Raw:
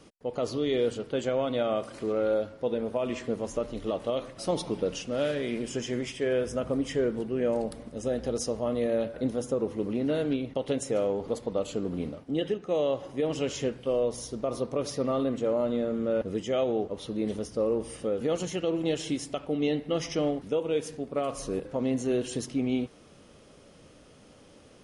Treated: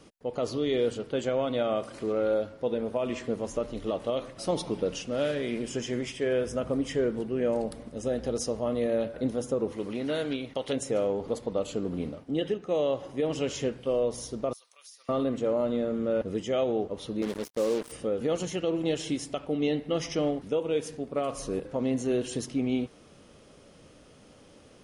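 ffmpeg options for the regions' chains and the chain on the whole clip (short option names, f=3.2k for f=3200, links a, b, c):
-filter_complex "[0:a]asettb=1/sr,asplit=3[a][b][c];[a]atrim=end=9.724[d];[b]atrim=start=9.72:end=10.73,asetpts=PTS-STARTPTS,afade=t=in:d=0.004:c=qsin,afade=t=out:st=1.006:d=0.004:c=qsin,tiltshelf=f=730:g=-5.5,bandreject=f=2.7k:w=25[e];[c]atrim=start=10.726[f];[d][e]acrossfade=d=0.004:c1=hsin:c2=qsin[g];[g][f]acrossfade=d=0.004:c1=qsin:c2=hsin,asettb=1/sr,asplit=3[h][i][j];[h]atrim=end=14.534[k];[i]atrim=start=14.53:end=15.09,asetpts=PTS-STARTPTS,afade=t=in:d=0.004:c=qsin,afade=t=out:st=0.556:d=0.004:c=qsin,highpass=1.3k,aderivative,acompressor=threshold=-48dB:ratio=4:attack=3.2:release=140:knee=1:detection=peak[l];[j]atrim=start=15.086[m];[k][l]acrossfade=d=0.004:c1=hsin:c2=qsin[n];[n][m]acrossfade=d=0.004:c1=qsin:c2=hsin,asettb=1/sr,asplit=3[o][p][q];[o]atrim=end=17.224[r];[p]atrim=start=17.22:end=17.92,asetpts=PTS-STARTPTS,afade=t=in:d=0.004:c=qsin,afade=t=out:st=0.696:d=0.004:c=qsin,highpass=190,acrusher=bits=5:mix=0:aa=0.5[s];[q]atrim=start=17.916[t];[r][s]acrossfade=d=0.004:c1=hsin:c2=qsin[u];[u][t]acrossfade=d=0.004:c1=qsin:c2=hsin"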